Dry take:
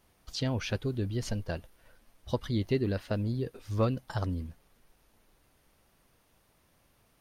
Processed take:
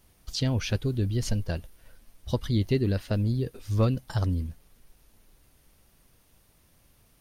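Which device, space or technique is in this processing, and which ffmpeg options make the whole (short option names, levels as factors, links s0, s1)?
smiley-face EQ: -af "lowshelf=f=110:g=6,equalizer=f=950:t=o:w=2.5:g=-4,highshelf=f=5400:g=4.5,volume=1.5"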